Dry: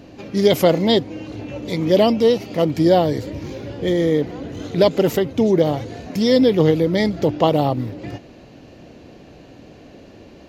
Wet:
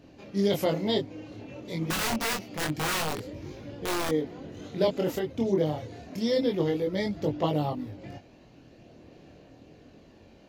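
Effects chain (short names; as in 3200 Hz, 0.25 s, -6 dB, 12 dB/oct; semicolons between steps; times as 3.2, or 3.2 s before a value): 1.9–4.09 wrapped overs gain 13.5 dB; chorus voices 2, 0.27 Hz, delay 23 ms, depth 3.7 ms; gain -7.5 dB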